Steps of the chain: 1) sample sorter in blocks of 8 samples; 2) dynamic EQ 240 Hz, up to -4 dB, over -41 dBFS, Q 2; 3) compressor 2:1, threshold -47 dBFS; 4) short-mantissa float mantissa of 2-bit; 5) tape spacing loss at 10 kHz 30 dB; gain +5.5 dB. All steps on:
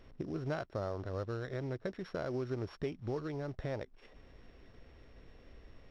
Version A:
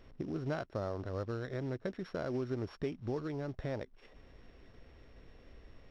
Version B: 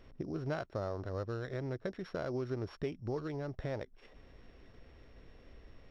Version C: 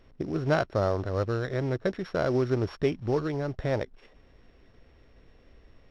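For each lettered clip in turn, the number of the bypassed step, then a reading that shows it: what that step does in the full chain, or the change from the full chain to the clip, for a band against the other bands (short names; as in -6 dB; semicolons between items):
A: 2, momentary loudness spread change -18 LU; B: 4, distortion -20 dB; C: 3, mean gain reduction 6.5 dB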